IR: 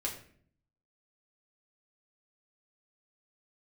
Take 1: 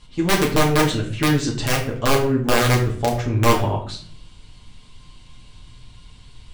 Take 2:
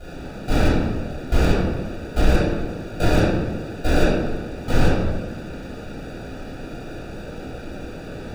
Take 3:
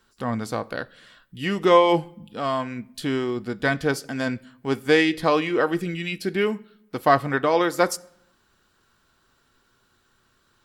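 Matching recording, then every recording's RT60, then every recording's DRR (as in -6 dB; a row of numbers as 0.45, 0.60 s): 1; 0.55 s, 1.3 s, not exponential; -3.0, -11.5, 13.0 dB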